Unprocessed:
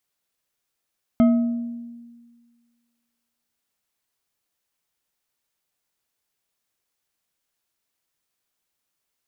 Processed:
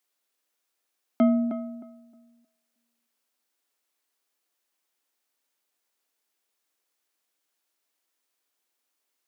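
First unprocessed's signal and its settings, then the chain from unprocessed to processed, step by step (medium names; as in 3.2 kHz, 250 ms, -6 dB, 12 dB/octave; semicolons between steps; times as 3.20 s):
glass hit bar, length 3.53 s, lowest mode 236 Hz, decay 1.67 s, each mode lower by 9.5 dB, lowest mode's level -11 dB
steep high-pass 240 Hz; on a send: filtered feedback delay 311 ms, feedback 23%, low-pass 1.3 kHz, level -7.5 dB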